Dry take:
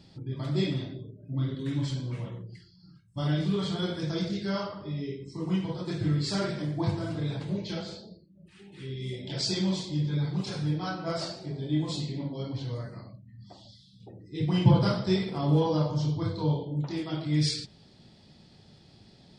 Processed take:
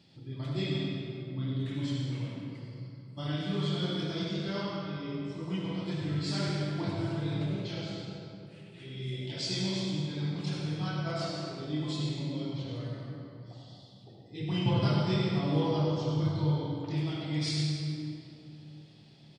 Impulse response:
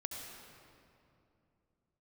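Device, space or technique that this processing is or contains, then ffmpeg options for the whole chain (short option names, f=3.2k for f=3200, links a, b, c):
PA in a hall: -filter_complex "[0:a]highpass=100,equalizer=f=2.7k:t=o:w=0.96:g=6,aecho=1:1:99:0.355[a];[1:a]atrim=start_sample=2205[b];[a][b]afir=irnorm=-1:irlink=0,volume=-3.5dB"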